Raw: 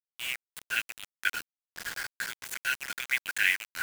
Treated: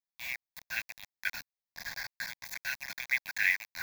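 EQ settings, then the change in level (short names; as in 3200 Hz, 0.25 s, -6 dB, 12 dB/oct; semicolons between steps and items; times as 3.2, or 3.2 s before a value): fixed phaser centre 2000 Hz, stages 8; 0.0 dB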